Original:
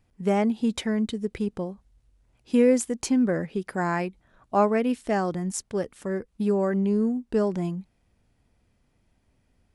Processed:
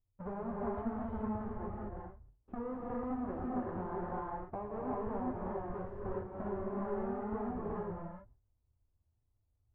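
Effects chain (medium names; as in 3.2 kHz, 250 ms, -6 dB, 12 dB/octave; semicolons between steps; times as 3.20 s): square wave that keeps the level; low-pass 1.2 kHz 24 dB/octave; gate with hold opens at -48 dBFS; resonant low shelf 130 Hz +8 dB, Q 3; compression 6:1, threshold -32 dBFS, peak gain reduction 16.5 dB; flange 2 Hz, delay 4.2 ms, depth 8.8 ms, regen -28%; gated-style reverb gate 430 ms rising, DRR -4 dB; trim -5 dB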